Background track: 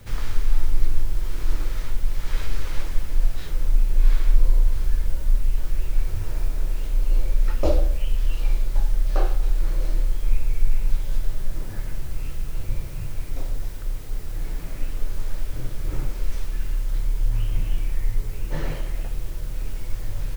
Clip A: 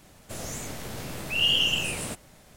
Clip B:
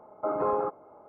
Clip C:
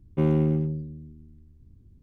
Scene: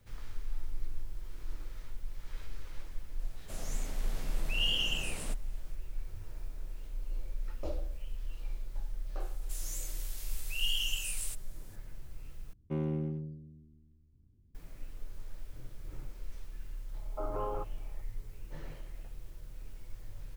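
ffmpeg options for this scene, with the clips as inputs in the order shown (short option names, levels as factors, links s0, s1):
-filter_complex "[1:a]asplit=2[s0][s1];[0:a]volume=0.133[s2];[s1]aderivative[s3];[s2]asplit=2[s4][s5];[s4]atrim=end=12.534[s6];[3:a]atrim=end=2.02,asetpts=PTS-STARTPTS,volume=0.266[s7];[s5]atrim=start=14.546[s8];[s0]atrim=end=2.56,asetpts=PTS-STARTPTS,volume=0.355,afade=t=in:d=0.004:c=hsin,afade=t=out:st=2.556:d=0.004:c=hsin,adelay=3190[s9];[s3]atrim=end=2.56,asetpts=PTS-STARTPTS,volume=0.668,afade=t=in:d=0.004:c=hsin,afade=t=out:st=2.556:d=0.004:c=hsin,adelay=9200[s10];[2:a]atrim=end=1.08,asetpts=PTS-STARTPTS,volume=0.316,afade=t=in:d=0.004:c=hsin,afade=t=out:st=1.076:d=0.004:c=hsin,adelay=16940[s11];[s6][s7]acrossfade=d=0.004:c1=hsin:c2=hsin[s12];[s12][s8]acrossfade=d=0.004:c1=hsin:c2=hsin[s13];[s13][s9][s10][s11]amix=inputs=4:normalize=0"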